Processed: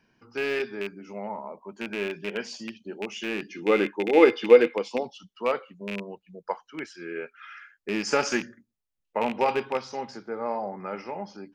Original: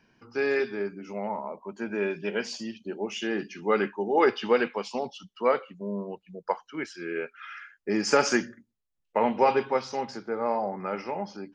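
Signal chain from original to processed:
loose part that buzzes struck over −34 dBFS, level −19 dBFS
0:03.48–0:05.03: hollow resonant body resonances 320/480/2,100/3,500 Hz, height 12 dB
level −2.5 dB

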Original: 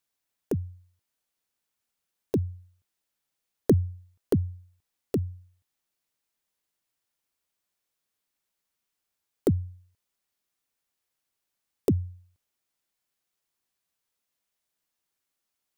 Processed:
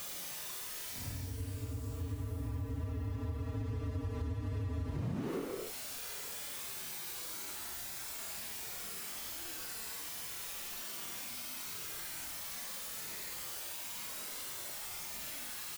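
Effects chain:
played backwards from end to start
brickwall limiter −21 dBFS, peak gain reduction 11 dB
power curve on the samples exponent 0.35
double-tracking delay 18 ms −7 dB
extreme stretch with random phases 9×, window 0.05 s, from 0:05.71
downward compressor 10 to 1, threshold −34 dBFS, peak gain reduction 16 dB

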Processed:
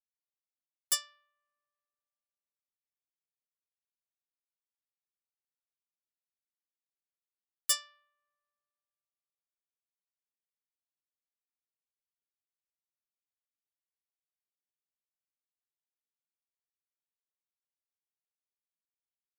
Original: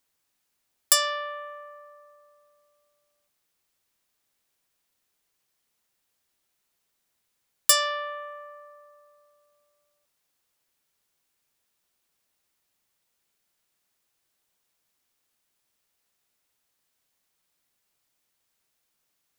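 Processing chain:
parametric band 600 Hz −14.5 dB 1.7 octaves
hard clipping −16 dBFS, distortion −8 dB
expander for the loud parts 2.5 to 1, over −43 dBFS
level −4 dB

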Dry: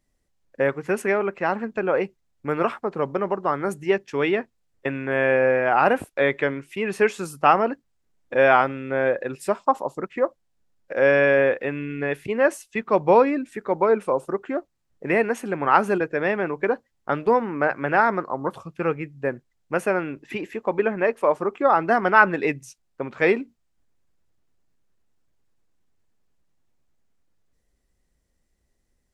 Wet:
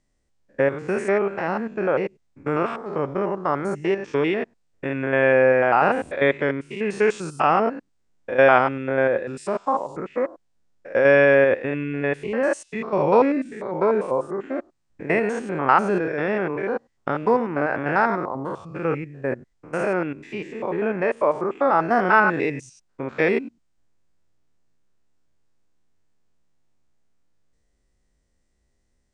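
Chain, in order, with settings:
spectrum averaged block by block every 100 ms
Chebyshev low-pass filter 9,100 Hz, order 5
level +3 dB

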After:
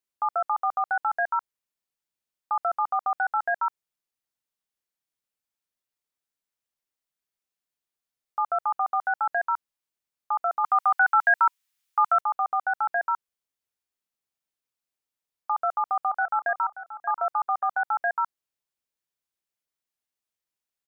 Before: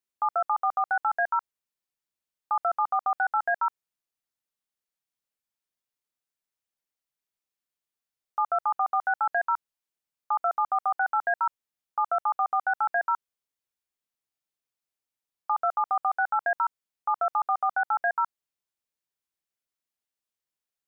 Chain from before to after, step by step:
0:10.64–0:12.21: drawn EQ curve 140 Hz 0 dB, 460 Hz −8 dB, 980 Hz +5 dB, 2,300 Hz +12 dB
0:15.53–0:16.66: delay throw 580 ms, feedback 20%, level −13.5 dB

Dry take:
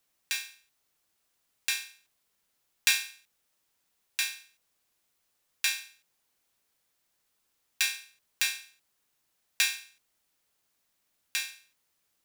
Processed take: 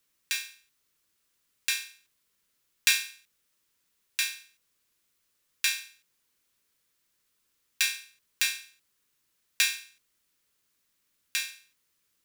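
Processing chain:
parametric band 740 Hz −11 dB 0.53 octaves
level +1.5 dB

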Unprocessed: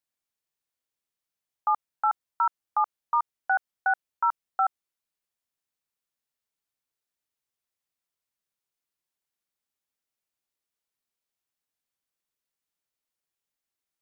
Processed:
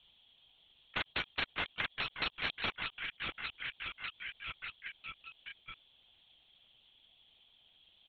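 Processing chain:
high-pass filter 220 Hz
parametric band 910 Hz −14 dB 1.5 octaves
in parallel at −11 dB: hard clipping −37 dBFS, distortion −8 dB
on the sum: low-pass with resonance 1,900 Hz, resonance Q 10
soft clipping −27 dBFS, distortion −12 dB
double-tracking delay 14 ms −13 dB
on a send: repeating echo 1,051 ms, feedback 56%, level −15 dB
on the sum: wrong playback speed 45 rpm record played at 78 rpm
linear-prediction vocoder at 8 kHz whisper
every bin compressed towards the loudest bin 4 to 1
level +1 dB

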